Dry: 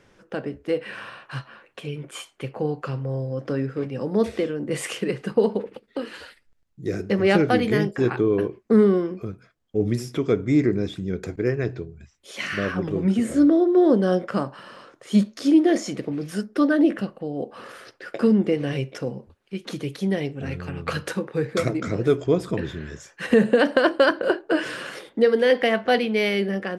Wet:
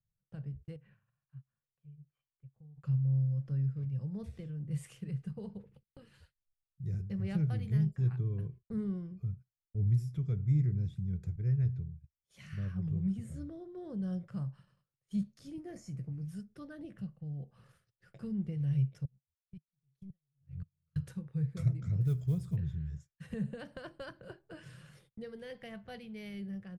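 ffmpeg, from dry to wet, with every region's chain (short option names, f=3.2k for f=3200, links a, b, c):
-filter_complex "[0:a]asettb=1/sr,asplit=3[a][b][c];[a]atrim=end=0.764[d];[b]atrim=start=0.76:end=2.76,asetpts=PTS-STARTPTS,afade=t=in:d=0.004:c=qsin,afade=t=out:st=1.996:d=0.004:c=qsin,lowpass=2.2k,acompressor=threshold=-40dB:ratio=6:attack=3.2:release=140:knee=1:detection=peak[e];[c]atrim=start=2.756[f];[d][e]acrossfade=d=0.004:c1=hsin:c2=qsin[g];[g][f]acrossfade=d=0.004:c1=qsin:c2=hsin,asettb=1/sr,asplit=3[h][i][j];[h]atrim=end=15.564[k];[i]atrim=start=15.56:end=16.27,asetpts=PTS-STARTPTS,afade=t=in:d=0.004:c=qsin,afade=t=out:st=0.706:d=0.004:c=qsin,equalizer=f=3.5k:t=o:w=0.45:g=-13,asplit=2[l][m];[m]adelay=17,volume=-9dB[n];[l][n]amix=inputs=2:normalize=0,atrim=end_sample=31311[o];[j]atrim=start=16.266[p];[k][o]acrossfade=d=0.004:c1=hsin:c2=qsin[q];[q][p]acrossfade=d=0.004:c1=qsin:c2=hsin,asettb=1/sr,asplit=3[r][s][t];[r]atrim=end=19.054[u];[s]atrim=start=19.05:end=20.96,asetpts=PTS-STARTPTS,afade=t=in:d=0.004:c=qsin,afade=t=out:st=1.906:d=0.004:c=qsin,acompressor=threshold=-28dB:ratio=10:attack=3.2:release=140:knee=1:detection=peak,aeval=exprs='(tanh(15.8*val(0)+0.2)-tanh(0.2))/15.8':c=same,aeval=exprs='val(0)*pow(10,-33*if(lt(mod(-1.9*n/s,1),2*abs(-1.9)/1000),1-mod(-1.9*n/s,1)/(2*abs(-1.9)/1000),(mod(-1.9*n/s,1)-2*abs(-1.9)/1000)/(1-2*abs(-1.9)/1000))/20)':c=same[v];[t]atrim=start=20.956[w];[u][v]acrossfade=d=0.004:c1=hsin:c2=qsin[x];[x][w]acrossfade=d=0.004:c1=qsin:c2=hsin,asettb=1/sr,asplit=3[y][z][aa];[y]atrim=end=22.014[ab];[z]atrim=start=22.01:end=22.56,asetpts=PTS-STARTPTS,afade=t=in:d=0.004:c=qsin,afade=t=out:st=0.546:d=0.004:c=qsin,highshelf=f=3.4k:g=5,acrusher=bits=6:mode=log:mix=0:aa=0.000001[ac];[aa]atrim=start=22.556[ad];[ab][ac]acrossfade=d=0.004:c1=hsin:c2=qsin[ae];[ae][ad]acrossfade=d=0.004:c1=qsin:c2=hsin,agate=range=-23dB:threshold=-41dB:ratio=16:detection=peak,firequalizer=gain_entry='entry(150,0);entry(250,-29);entry(10000,-19)':delay=0.05:min_phase=1"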